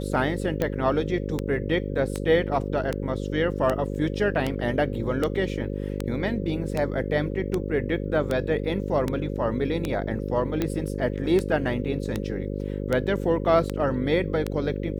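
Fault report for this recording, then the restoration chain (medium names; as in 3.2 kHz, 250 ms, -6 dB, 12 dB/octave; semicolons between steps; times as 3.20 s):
buzz 50 Hz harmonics 11 -30 dBFS
tick 78 rpm -12 dBFS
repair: de-click; de-hum 50 Hz, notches 11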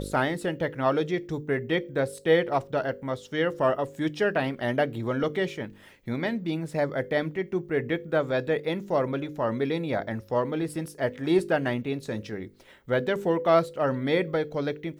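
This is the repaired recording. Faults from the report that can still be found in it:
nothing left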